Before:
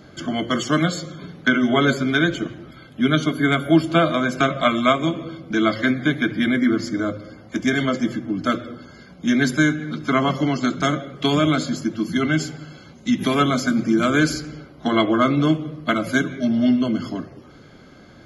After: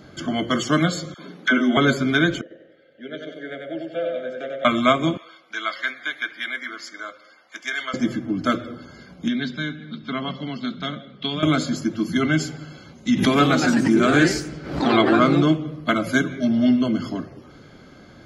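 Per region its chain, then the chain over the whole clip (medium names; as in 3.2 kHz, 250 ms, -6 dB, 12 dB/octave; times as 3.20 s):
1.14–1.77 s: steep high-pass 190 Hz + phase dispersion lows, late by 47 ms, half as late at 740 Hz
2.41–4.65 s: vowel filter e + band-stop 2.5 kHz, Q 5.7 + feedback delay 94 ms, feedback 47%, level -3.5 dB
5.17–7.94 s: high-pass 1.2 kHz + treble shelf 4.6 kHz -5.5 dB
9.28–11.43 s: four-pole ladder low-pass 4.2 kHz, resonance 60% + peaking EQ 210 Hz +12 dB 0.38 oct + band-stop 320 Hz, Q 8.6
13.12–15.68 s: low-pass 8.9 kHz + ever faster or slower copies 153 ms, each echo +2 st, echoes 3, each echo -6 dB + swell ahead of each attack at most 79 dB/s
whole clip: none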